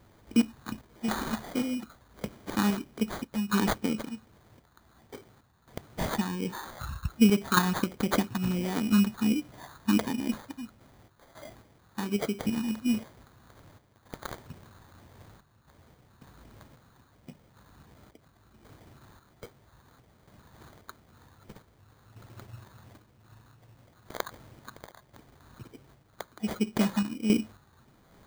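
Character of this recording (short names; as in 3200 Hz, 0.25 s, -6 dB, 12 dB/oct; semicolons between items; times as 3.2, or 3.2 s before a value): phasing stages 6, 1.4 Hz, lowest notch 470–1900 Hz; random-step tremolo 3.7 Hz, depth 75%; aliases and images of a low sample rate 2700 Hz, jitter 0%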